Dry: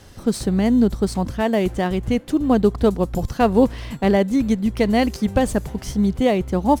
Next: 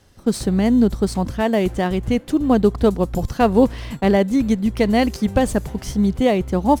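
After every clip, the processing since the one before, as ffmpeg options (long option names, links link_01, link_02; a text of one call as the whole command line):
ffmpeg -i in.wav -af "agate=range=-10dB:threshold=-33dB:ratio=16:detection=peak,volume=1dB" out.wav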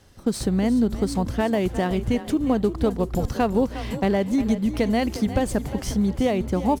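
ffmpeg -i in.wav -filter_complex "[0:a]acompressor=threshold=-20dB:ratio=2.5,asplit=5[link_01][link_02][link_03][link_04][link_05];[link_02]adelay=356,afreqshift=31,volume=-13dB[link_06];[link_03]adelay=712,afreqshift=62,volume=-21.4dB[link_07];[link_04]adelay=1068,afreqshift=93,volume=-29.8dB[link_08];[link_05]adelay=1424,afreqshift=124,volume=-38.2dB[link_09];[link_01][link_06][link_07][link_08][link_09]amix=inputs=5:normalize=0" out.wav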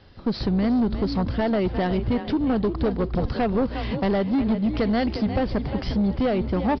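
ffmpeg -i in.wav -af "aresample=11025,asoftclip=type=tanh:threshold=-20dB,aresample=44100,volume=3.5dB" -ar 24000 -c:a libmp3lame -b:a 48k out.mp3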